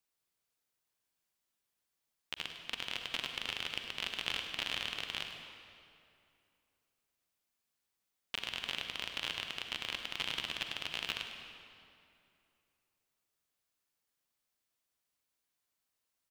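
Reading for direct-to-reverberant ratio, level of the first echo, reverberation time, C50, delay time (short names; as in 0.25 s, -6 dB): 4.0 dB, -12.0 dB, 2.6 s, 4.0 dB, 0.102 s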